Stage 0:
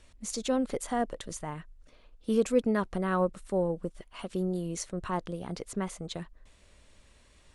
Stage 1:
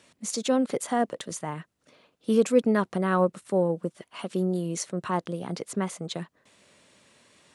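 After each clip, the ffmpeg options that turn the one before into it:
ffmpeg -i in.wav -af "highpass=frequency=130:width=0.5412,highpass=frequency=130:width=1.3066,volume=4.5dB" out.wav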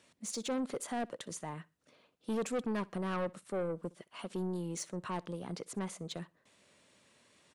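ffmpeg -i in.wav -af "asoftclip=type=tanh:threshold=-23dB,aecho=1:1:62|124:0.0631|0.0208,volume=-7dB" out.wav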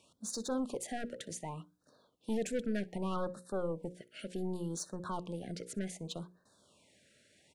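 ffmpeg -i in.wav -af "lowshelf=frequency=61:gain=8.5,bandreject=frequency=60:width_type=h:width=6,bandreject=frequency=120:width_type=h:width=6,bandreject=frequency=180:width_type=h:width=6,bandreject=frequency=240:width_type=h:width=6,bandreject=frequency=300:width_type=h:width=6,bandreject=frequency=360:width_type=h:width=6,bandreject=frequency=420:width_type=h:width=6,bandreject=frequency=480:width_type=h:width=6,bandreject=frequency=540:width_type=h:width=6,afftfilt=real='re*(1-between(b*sr/1024,920*pow(2600/920,0.5+0.5*sin(2*PI*0.66*pts/sr))/1.41,920*pow(2600/920,0.5+0.5*sin(2*PI*0.66*pts/sr))*1.41))':imag='im*(1-between(b*sr/1024,920*pow(2600/920,0.5+0.5*sin(2*PI*0.66*pts/sr))/1.41,920*pow(2600/920,0.5+0.5*sin(2*PI*0.66*pts/sr))*1.41))':win_size=1024:overlap=0.75" out.wav

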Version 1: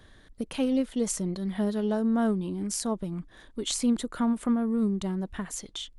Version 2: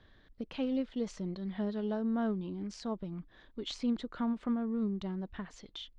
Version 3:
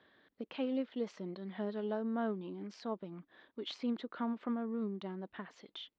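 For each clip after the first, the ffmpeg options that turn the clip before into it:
ffmpeg -i in.wav -af "lowpass=frequency=4700:width=0.5412,lowpass=frequency=4700:width=1.3066,volume=-7dB" out.wav
ffmpeg -i in.wav -af "highpass=270,lowpass=3600" out.wav

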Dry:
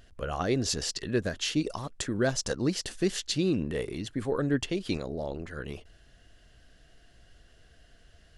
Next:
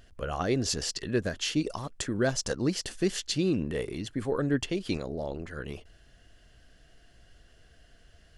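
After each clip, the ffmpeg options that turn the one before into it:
ffmpeg -i in.wav -af "bandreject=frequency=3800:width=23" out.wav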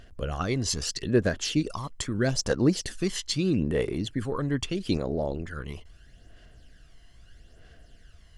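ffmpeg -i in.wav -af "aphaser=in_gain=1:out_gain=1:delay=1:decay=0.51:speed=0.78:type=sinusoidal" out.wav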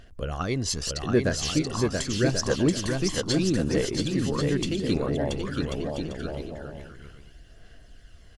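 ffmpeg -i in.wav -af "aecho=1:1:680|1088|1333|1480|1568:0.631|0.398|0.251|0.158|0.1" out.wav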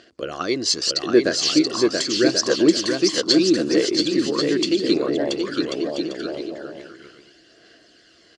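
ffmpeg -i in.wav -af "highpass=330,equalizer=frequency=330:width_type=q:width=4:gain=10,equalizer=frequency=860:width_type=q:width=4:gain=-8,equalizer=frequency=4500:width_type=q:width=4:gain=9,lowpass=frequency=7900:width=0.5412,lowpass=frequency=7900:width=1.3066,volume=5.5dB" out.wav

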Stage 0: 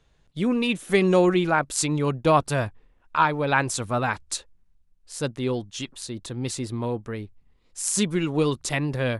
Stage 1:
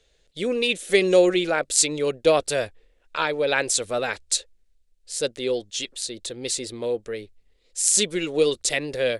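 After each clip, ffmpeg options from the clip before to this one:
ffmpeg -i in.wav -af "equalizer=frequency=125:width_type=o:width=1:gain=-12,equalizer=frequency=250:width_type=o:width=1:gain=-5,equalizer=frequency=500:width_type=o:width=1:gain=11,equalizer=frequency=1000:width_type=o:width=1:gain=-11,equalizer=frequency=2000:width_type=o:width=1:gain=4,equalizer=frequency=4000:width_type=o:width=1:gain=7,equalizer=frequency=8000:width_type=o:width=1:gain=8,volume=-1.5dB" out.wav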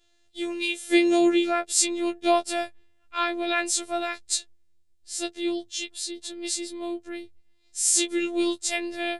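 ffmpeg -i in.wav -af "afftfilt=real='hypot(re,im)*cos(PI*b)':imag='0':win_size=512:overlap=0.75,afftfilt=real='re*2*eq(mod(b,4),0)':imag='im*2*eq(mod(b,4),0)':win_size=2048:overlap=0.75,volume=-2dB" out.wav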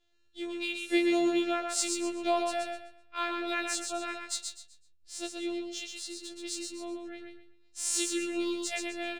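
ffmpeg -i in.wav -filter_complex "[0:a]adynamicsmooth=sensitivity=5.5:basefreq=6600,asplit=2[link_01][link_02];[link_02]aecho=0:1:127|254|381|508:0.596|0.173|0.0501|0.0145[link_03];[link_01][link_03]amix=inputs=2:normalize=0,volume=-7dB" out.wav

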